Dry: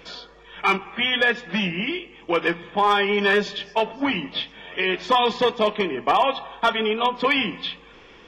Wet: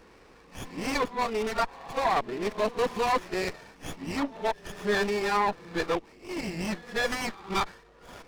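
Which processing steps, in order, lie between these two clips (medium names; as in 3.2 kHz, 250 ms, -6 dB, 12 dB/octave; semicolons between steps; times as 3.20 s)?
reverse the whole clip; sliding maximum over 9 samples; trim -6 dB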